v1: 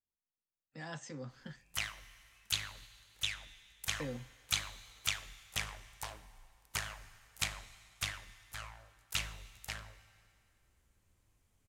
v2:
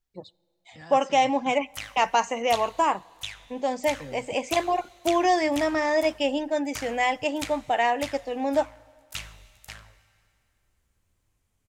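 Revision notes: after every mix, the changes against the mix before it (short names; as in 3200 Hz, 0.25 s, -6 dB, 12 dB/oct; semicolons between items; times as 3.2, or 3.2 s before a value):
first voice: unmuted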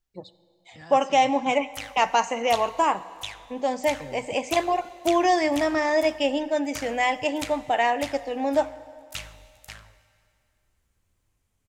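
first voice: send +11.5 dB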